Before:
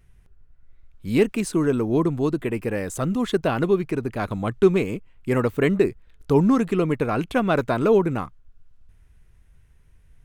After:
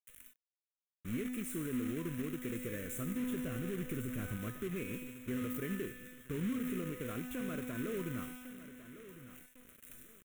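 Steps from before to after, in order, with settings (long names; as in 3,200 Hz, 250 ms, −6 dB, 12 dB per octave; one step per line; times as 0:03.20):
spike at every zero crossing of −18.5 dBFS
high-shelf EQ 2,200 Hz −7.5 dB
noise gate −40 dBFS, range −28 dB
tuned comb filter 250 Hz, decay 1.3 s, mix 90%
in parallel at +0.5 dB: downward compressor 10 to 1, threshold −45 dBFS, peak gain reduction 15.5 dB
0:03.20–0:04.37: on the sum: low-shelf EQ 200 Hz +9.5 dB
brickwall limiter −30 dBFS, peak gain reduction 9.5 dB
repeating echo 1,103 ms, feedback 29%, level −14.5 dB
log-companded quantiser 4 bits
phaser with its sweep stopped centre 2,000 Hz, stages 4
level +1 dB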